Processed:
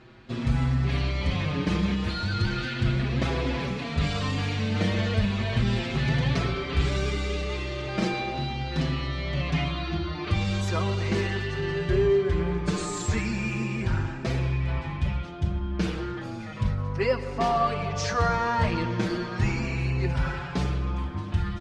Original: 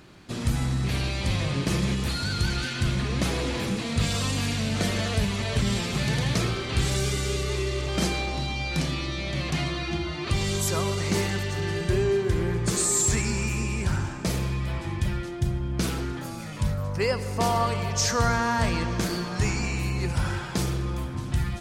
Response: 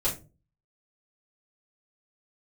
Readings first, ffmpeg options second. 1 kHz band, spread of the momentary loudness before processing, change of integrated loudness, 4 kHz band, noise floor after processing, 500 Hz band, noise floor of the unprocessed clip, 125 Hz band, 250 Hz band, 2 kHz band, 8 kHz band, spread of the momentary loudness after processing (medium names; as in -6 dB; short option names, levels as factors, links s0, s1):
+0.5 dB, 5 LU, -0.5 dB, -4.0 dB, -35 dBFS, +0.5 dB, -35 dBFS, 0.0 dB, 0.0 dB, -1.0 dB, -13.5 dB, 5 LU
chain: -filter_complex "[0:a]lowpass=3500,asplit=2[s0][s1];[s1]adelay=5.8,afreqshift=0.36[s2];[s0][s2]amix=inputs=2:normalize=1,volume=1.41"